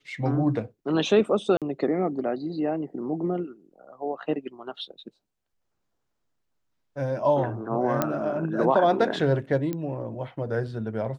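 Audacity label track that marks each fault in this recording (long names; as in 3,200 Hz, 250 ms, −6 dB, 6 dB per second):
1.570000	1.620000	drop-out 47 ms
8.020000	8.020000	click −9 dBFS
9.730000	9.730000	click −18 dBFS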